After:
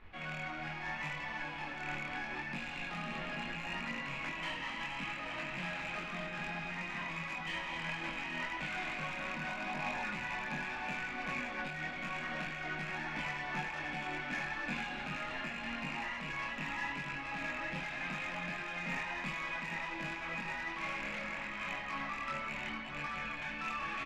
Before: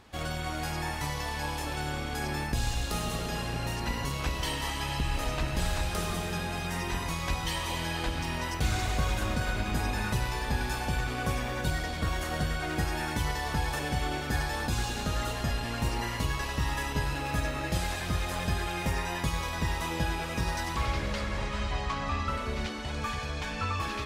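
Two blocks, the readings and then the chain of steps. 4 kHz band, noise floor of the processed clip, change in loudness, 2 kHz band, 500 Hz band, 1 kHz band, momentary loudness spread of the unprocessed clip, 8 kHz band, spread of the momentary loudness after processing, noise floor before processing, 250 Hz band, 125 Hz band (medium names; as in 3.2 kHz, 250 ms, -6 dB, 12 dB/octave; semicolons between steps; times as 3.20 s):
-9.0 dB, -43 dBFS, -6.5 dB, -1.5 dB, -10.5 dB, -7.0 dB, 2 LU, -17.5 dB, 2 LU, -35 dBFS, -9.0 dB, -17.0 dB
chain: rattle on loud lows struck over -30 dBFS, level -26 dBFS; steep high-pass 150 Hz 72 dB/octave; peaking EQ 430 Hz -13 dB 0.31 oct; time-frequency box 9.48–10.02 s, 550–1100 Hz +7 dB; added noise brown -48 dBFS; resonant low-pass 2.3 kHz, resonance Q 2.6; saturation -25.5 dBFS, distortion -16 dB; chorus voices 2, 0.76 Hz, delay 24 ms, depth 3.2 ms; delay 833 ms -9 dB; random flutter of the level, depth 55%; trim -1.5 dB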